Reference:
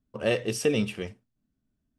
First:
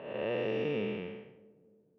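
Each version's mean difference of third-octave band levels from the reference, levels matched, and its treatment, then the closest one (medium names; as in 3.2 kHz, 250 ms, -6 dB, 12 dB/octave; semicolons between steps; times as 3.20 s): 9.0 dB: spectral blur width 379 ms; cabinet simulation 170–2800 Hz, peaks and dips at 260 Hz -5 dB, 900 Hz +7 dB, 1.7 kHz -3 dB; on a send: filtered feedback delay 296 ms, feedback 57%, low-pass 860 Hz, level -22 dB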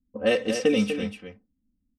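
5.0 dB: level-controlled noise filter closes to 300 Hz, open at -23 dBFS; comb 3.9 ms, depth 92%; on a send: delay 246 ms -8.5 dB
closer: second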